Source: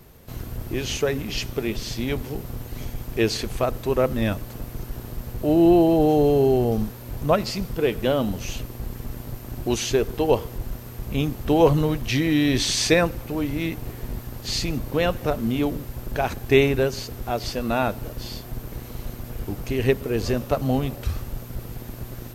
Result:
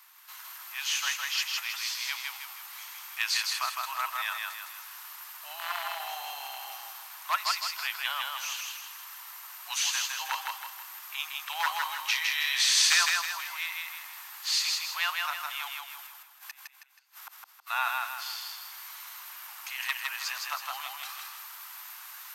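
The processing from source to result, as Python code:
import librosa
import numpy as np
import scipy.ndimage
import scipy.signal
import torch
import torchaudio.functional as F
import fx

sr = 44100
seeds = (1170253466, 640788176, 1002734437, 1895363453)

p1 = fx.gate_flip(x, sr, shuts_db=-21.0, range_db=-38, at=(15.78, 17.66), fade=0.02)
p2 = 10.0 ** (-10.0 / 20.0) * (np.abs((p1 / 10.0 ** (-10.0 / 20.0) + 3.0) % 4.0 - 2.0) - 1.0)
p3 = scipy.signal.sosfilt(scipy.signal.butter(8, 940.0, 'highpass', fs=sr, output='sos'), p2)
y = p3 + fx.echo_feedback(p3, sr, ms=160, feedback_pct=43, wet_db=-3.0, dry=0)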